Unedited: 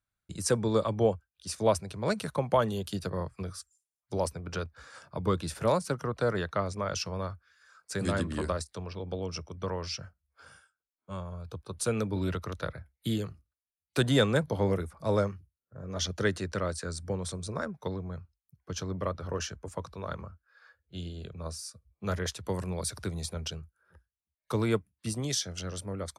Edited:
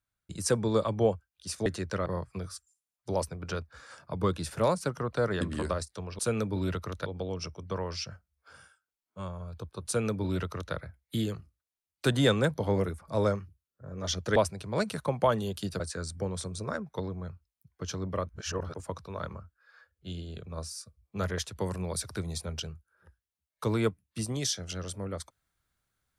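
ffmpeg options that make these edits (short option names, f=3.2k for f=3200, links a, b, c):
-filter_complex "[0:a]asplit=10[a][b][c][d][e][f][g][h][i][j];[a]atrim=end=1.662[k];[b]atrim=start=16.278:end=16.682[l];[c]atrim=start=3.098:end=6.452[m];[d]atrim=start=8.198:end=8.982[n];[e]atrim=start=11.788:end=12.662[o];[f]atrim=start=8.978:end=16.282[p];[g]atrim=start=1.658:end=3.102[q];[h]atrim=start=16.678:end=19.172[r];[i]atrim=start=19.168:end=19.632,asetpts=PTS-STARTPTS,areverse[s];[j]atrim=start=19.628[t];[k][l]acrossfade=d=0.004:c1=hsin:c2=hsin[u];[u][m]acrossfade=d=0.004:c1=hsin:c2=hsin[v];[v][n]acrossfade=d=0.004:c1=hsin:c2=hsin[w];[w][o]acrossfade=d=0.004:c1=hsin:c2=hsin[x];[x][p]acrossfade=d=0.004:c1=hsin:c2=hsin[y];[y][q]acrossfade=d=0.004:c1=hsin:c2=hsin[z];[z][r]acrossfade=d=0.004:c1=hsin:c2=hsin[aa];[aa][s]acrossfade=d=0.004:c1=hsin:c2=hsin[ab];[ab][t]acrossfade=d=0.004:c1=hsin:c2=hsin"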